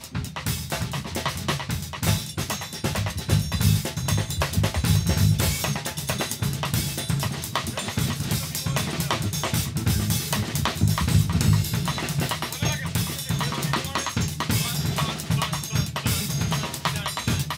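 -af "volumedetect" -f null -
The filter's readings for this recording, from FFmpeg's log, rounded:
mean_volume: -24.9 dB
max_volume: -5.3 dB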